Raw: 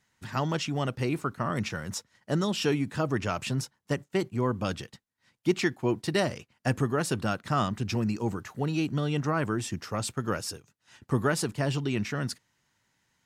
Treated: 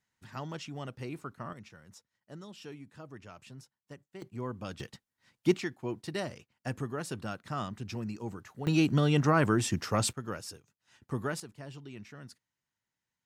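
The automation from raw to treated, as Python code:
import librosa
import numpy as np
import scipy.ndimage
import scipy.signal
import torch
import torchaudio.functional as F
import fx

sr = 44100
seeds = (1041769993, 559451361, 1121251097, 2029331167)

y = fx.gain(x, sr, db=fx.steps((0.0, -11.0), (1.53, -19.5), (4.22, -10.0), (4.8, -0.5), (5.57, -9.0), (8.67, 3.0), (10.13, -8.0), (11.4, -17.0)))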